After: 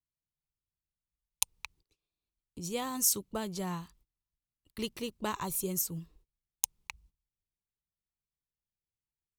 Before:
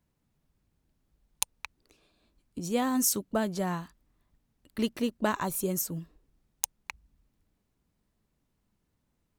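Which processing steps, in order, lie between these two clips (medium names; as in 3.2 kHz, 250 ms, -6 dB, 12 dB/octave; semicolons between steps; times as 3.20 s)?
gate -60 dBFS, range -22 dB; fifteen-band graphic EQ 250 Hz -11 dB, 630 Hz -10 dB, 1.6 kHz -9 dB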